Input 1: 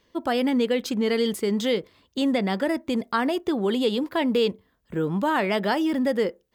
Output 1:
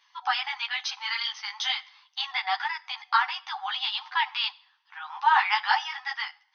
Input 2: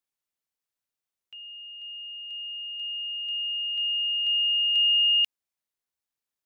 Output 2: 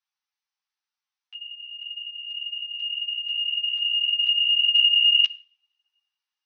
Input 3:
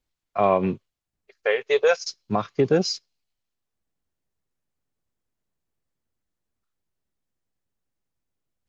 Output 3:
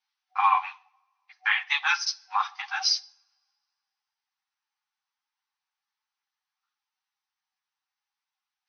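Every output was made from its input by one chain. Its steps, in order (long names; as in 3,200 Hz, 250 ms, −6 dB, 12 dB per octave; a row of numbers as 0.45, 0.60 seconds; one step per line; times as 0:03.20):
coupled-rooms reverb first 0.49 s, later 2.1 s, from −27 dB, DRR 17.5 dB
brick-wall band-pass 750–6,300 Hz
string-ensemble chorus
normalise the peak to −9 dBFS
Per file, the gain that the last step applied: +7.0, +6.5, +7.5 decibels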